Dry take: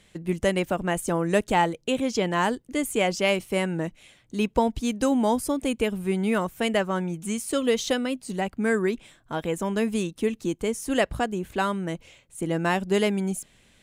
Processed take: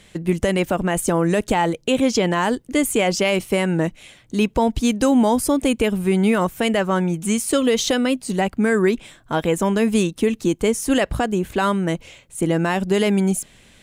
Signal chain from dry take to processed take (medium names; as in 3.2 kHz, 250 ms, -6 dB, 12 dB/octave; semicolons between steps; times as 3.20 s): peak limiter -16.5 dBFS, peak gain reduction 8.5 dB; trim +8.5 dB